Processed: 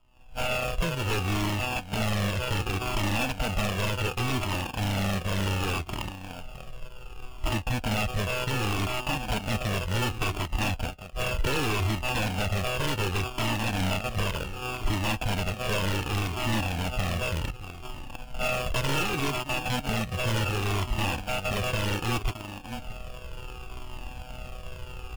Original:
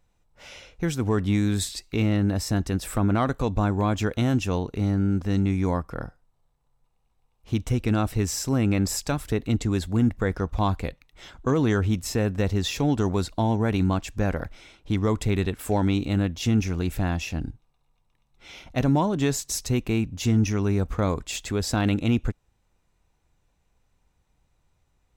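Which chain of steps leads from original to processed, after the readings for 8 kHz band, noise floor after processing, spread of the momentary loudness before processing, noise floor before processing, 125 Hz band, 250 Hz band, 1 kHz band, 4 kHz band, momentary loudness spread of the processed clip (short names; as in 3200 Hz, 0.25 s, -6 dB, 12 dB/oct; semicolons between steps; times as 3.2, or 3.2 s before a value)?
-3.5 dB, -42 dBFS, 7 LU, -70 dBFS, -4.5 dB, -9.0 dB, +1.0 dB, +4.5 dB, 14 LU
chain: sample sorter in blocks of 32 samples; recorder AGC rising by 65 dB/s; bell 6800 Hz +9 dB 2.8 oct; on a send: echo 0.62 s -14 dB; on the sum: sample-and-hold 22×; bell 2700 Hz +11.5 dB 0.3 oct; wavefolder -16.5 dBFS; cascading flanger falling 0.67 Hz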